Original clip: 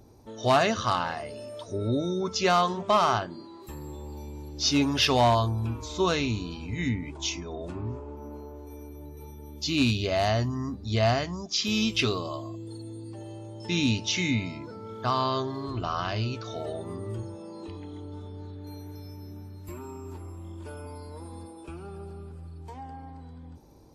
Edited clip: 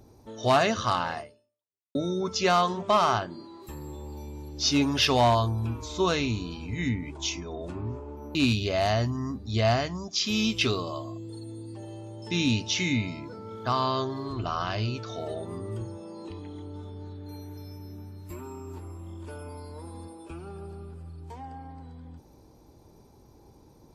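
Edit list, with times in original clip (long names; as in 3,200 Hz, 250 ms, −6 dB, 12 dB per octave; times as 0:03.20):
0:01.19–0:01.95: fade out exponential
0:08.35–0:09.73: remove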